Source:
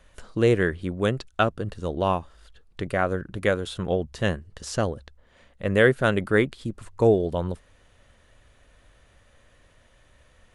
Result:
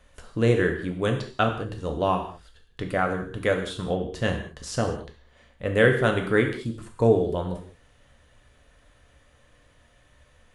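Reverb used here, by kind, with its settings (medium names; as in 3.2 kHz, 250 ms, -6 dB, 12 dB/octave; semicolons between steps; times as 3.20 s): gated-style reverb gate 230 ms falling, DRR 3 dB; trim -2 dB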